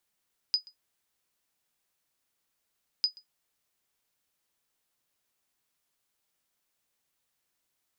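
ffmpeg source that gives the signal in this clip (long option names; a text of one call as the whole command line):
ffmpeg -f lavfi -i "aevalsrc='0.15*(sin(2*PI*4970*mod(t,2.5))*exp(-6.91*mod(t,2.5)/0.12)+0.0596*sin(2*PI*4970*max(mod(t,2.5)-0.13,0))*exp(-6.91*max(mod(t,2.5)-0.13,0)/0.12))':duration=5:sample_rate=44100" out.wav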